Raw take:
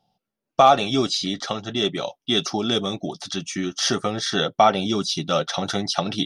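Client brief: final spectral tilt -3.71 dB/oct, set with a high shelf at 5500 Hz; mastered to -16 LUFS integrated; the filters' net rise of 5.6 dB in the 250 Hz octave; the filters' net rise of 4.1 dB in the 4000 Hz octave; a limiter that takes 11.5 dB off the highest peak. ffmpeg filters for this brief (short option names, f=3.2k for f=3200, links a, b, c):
-af "equalizer=f=250:t=o:g=7,equalizer=f=4k:t=o:g=3.5,highshelf=f=5.5k:g=4,volume=7.5dB,alimiter=limit=-5.5dB:level=0:latency=1"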